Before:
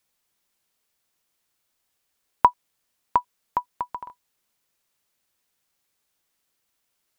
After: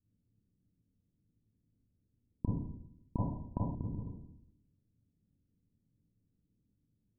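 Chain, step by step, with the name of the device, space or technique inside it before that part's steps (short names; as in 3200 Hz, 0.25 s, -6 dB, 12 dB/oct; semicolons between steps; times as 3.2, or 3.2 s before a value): club heard from the street (limiter -10.5 dBFS, peak gain reduction 8.5 dB; LPF 250 Hz 24 dB/oct; reverb RT60 0.70 s, pre-delay 27 ms, DRR -4.5 dB); 3.16–3.75 band shelf 760 Hz +12 dB 1.1 oct; gain +11 dB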